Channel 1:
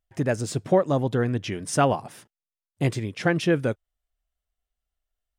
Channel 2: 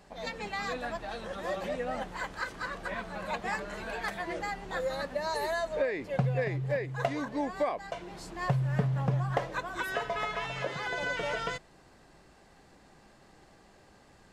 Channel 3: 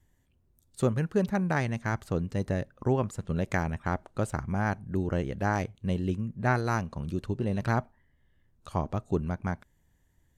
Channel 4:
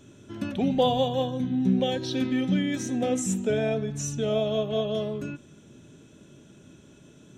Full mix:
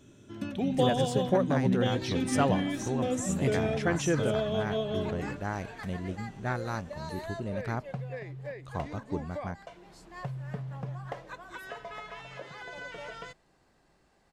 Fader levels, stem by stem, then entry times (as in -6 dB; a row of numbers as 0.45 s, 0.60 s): -6.5 dB, -9.0 dB, -6.5 dB, -4.5 dB; 0.60 s, 1.75 s, 0.00 s, 0.00 s